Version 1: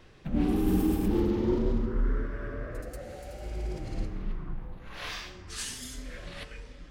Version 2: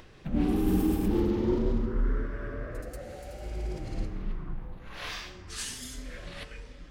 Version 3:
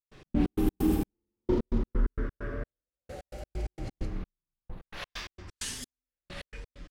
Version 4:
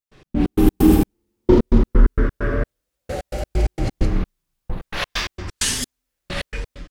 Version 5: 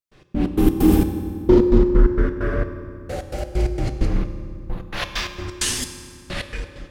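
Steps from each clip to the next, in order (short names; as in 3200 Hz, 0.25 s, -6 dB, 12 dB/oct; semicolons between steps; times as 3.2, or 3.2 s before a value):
upward compressor, threshold -47 dBFS
step gate ".x.x.x.xx....x" 131 bpm -60 dB; gain +1 dB
AGC gain up to 14 dB; gain +1.5 dB
reverb RT60 2.4 s, pre-delay 3 ms, DRR 7.5 dB; gain -2 dB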